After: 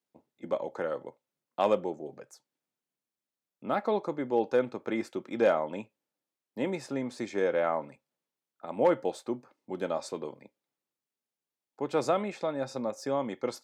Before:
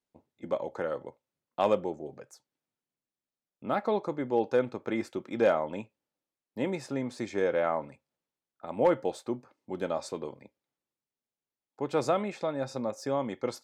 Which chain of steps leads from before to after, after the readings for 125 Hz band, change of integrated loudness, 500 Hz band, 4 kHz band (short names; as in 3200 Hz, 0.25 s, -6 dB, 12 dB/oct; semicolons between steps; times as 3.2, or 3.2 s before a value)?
-2.5 dB, 0.0 dB, 0.0 dB, 0.0 dB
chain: HPF 140 Hz 12 dB/oct